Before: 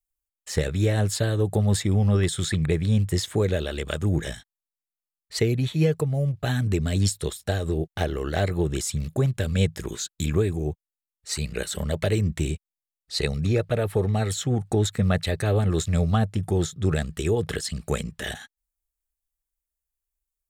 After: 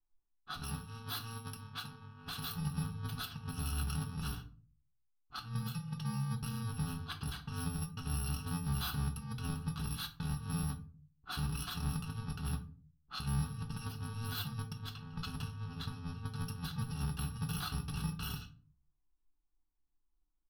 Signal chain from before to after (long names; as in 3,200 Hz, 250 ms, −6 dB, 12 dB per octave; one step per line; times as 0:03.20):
samples in bit-reversed order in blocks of 128 samples
compressor whose output falls as the input rises −28 dBFS, ratio −0.5
high-shelf EQ 3,400 Hz −8 dB
phaser with its sweep stopped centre 2,100 Hz, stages 6
comb filter 6.9 ms, depth 37%
brickwall limiter −25 dBFS, peak gain reduction 8 dB
low-pass that shuts in the quiet parts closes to 890 Hz, open at −31 dBFS
0:00.62–0:02.56: low-shelf EQ 160 Hz −9 dB
rectangular room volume 260 cubic metres, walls furnished, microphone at 1 metre
level −3.5 dB